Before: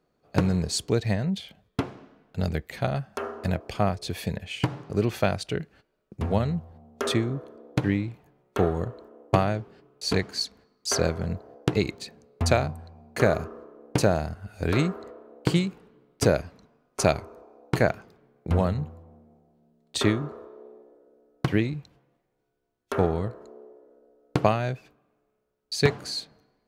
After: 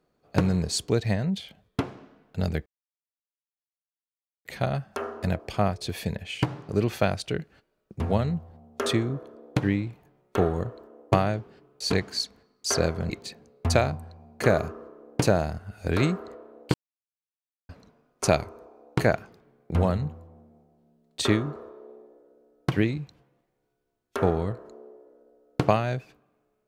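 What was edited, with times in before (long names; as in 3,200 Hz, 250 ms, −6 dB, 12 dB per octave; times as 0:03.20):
0:02.66: splice in silence 1.79 s
0:11.31–0:11.86: remove
0:15.50–0:16.45: silence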